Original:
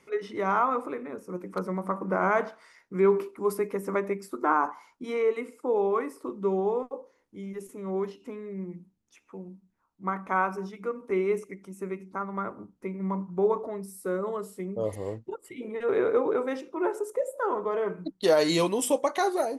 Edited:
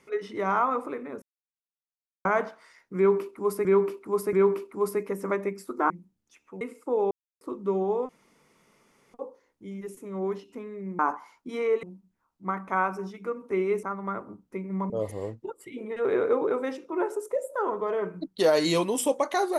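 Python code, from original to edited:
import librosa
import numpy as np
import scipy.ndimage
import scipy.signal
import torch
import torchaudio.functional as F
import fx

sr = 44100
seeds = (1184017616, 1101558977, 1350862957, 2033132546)

y = fx.edit(x, sr, fx.silence(start_s=1.22, length_s=1.03),
    fx.repeat(start_s=2.97, length_s=0.68, count=3),
    fx.swap(start_s=4.54, length_s=0.84, other_s=8.71, other_length_s=0.71),
    fx.silence(start_s=5.88, length_s=0.3),
    fx.insert_room_tone(at_s=6.86, length_s=1.05),
    fx.cut(start_s=11.42, length_s=0.71),
    fx.cut(start_s=13.2, length_s=1.54), tone=tone)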